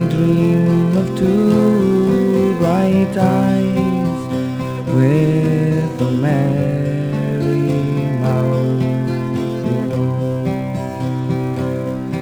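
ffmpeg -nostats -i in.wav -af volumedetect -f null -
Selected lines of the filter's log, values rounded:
mean_volume: -15.6 dB
max_volume: -2.1 dB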